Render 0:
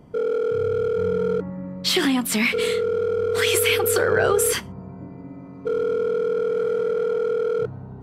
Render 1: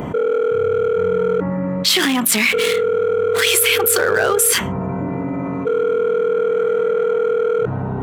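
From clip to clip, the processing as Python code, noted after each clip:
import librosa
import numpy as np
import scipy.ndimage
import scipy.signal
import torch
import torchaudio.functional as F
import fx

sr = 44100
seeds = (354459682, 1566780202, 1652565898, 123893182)

y = fx.wiener(x, sr, points=9)
y = fx.tilt_eq(y, sr, slope=2.5)
y = fx.env_flatten(y, sr, amount_pct=70)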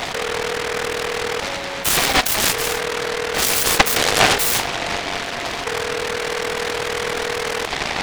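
y = fx.highpass_res(x, sr, hz=760.0, q=6.7)
y = fx.noise_mod_delay(y, sr, seeds[0], noise_hz=1300.0, depth_ms=0.29)
y = y * librosa.db_to_amplitude(-2.5)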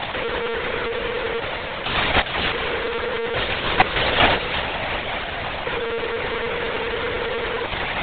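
y = fx.lpc_monotone(x, sr, seeds[1], pitch_hz=230.0, order=16)
y = y * librosa.db_to_amplitude(-1.0)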